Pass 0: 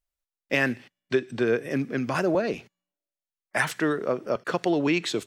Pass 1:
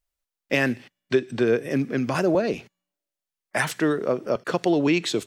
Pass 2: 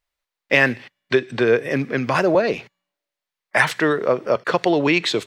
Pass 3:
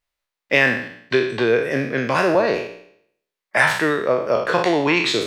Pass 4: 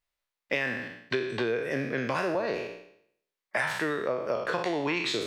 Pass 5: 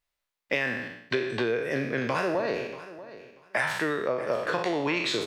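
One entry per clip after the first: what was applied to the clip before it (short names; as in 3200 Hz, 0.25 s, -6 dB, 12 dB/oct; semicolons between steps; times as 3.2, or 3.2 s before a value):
dynamic EQ 1500 Hz, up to -4 dB, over -36 dBFS, Q 0.76; gain +3.5 dB
graphic EQ 125/500/1000/2000/4000 Hz +5/+6/+8/+9/+7 dB; gain -2.5 dB
spectral trails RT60 0.67 s; gain -2 dB
compressor 4:1, threshold -22 dBFS, peak gain reduction 10 dB; gain -4.5 dB
feedback echo 0.636 s, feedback 19%, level -16 dB; gain +1.5 dB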